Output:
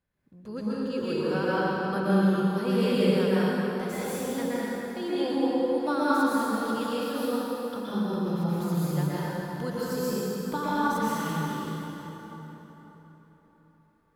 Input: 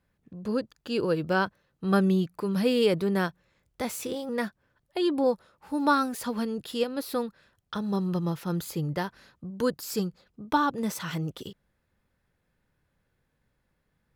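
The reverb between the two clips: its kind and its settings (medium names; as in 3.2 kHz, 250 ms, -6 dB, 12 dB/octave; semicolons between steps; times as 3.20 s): plate-style reverb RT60 4.2 s, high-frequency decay 0.65×, pre-delay 105 ms, DRR -10 dB; trim -9.5 dB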